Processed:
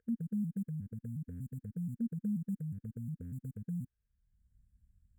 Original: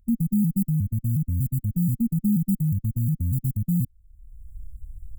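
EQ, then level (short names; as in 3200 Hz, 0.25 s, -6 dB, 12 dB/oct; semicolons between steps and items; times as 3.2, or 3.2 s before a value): double band-pass 870 Hz, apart 1.8 oct; +8.5 dB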